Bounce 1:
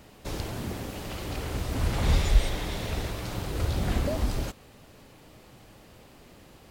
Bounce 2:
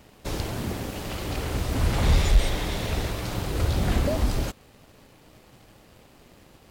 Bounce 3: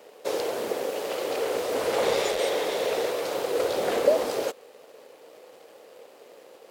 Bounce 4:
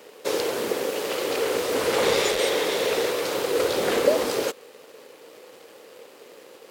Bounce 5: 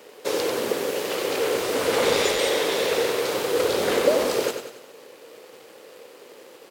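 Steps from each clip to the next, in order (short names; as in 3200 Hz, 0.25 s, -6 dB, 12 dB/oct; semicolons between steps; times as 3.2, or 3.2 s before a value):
sample leveller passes 1
resonant high-pass 480 Hz, resonance Q 4.7
bell 670 Hz -8 dB 0.81 oct; gain +6 dB
feedback echo 94 ms, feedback 49%, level -7.5 dB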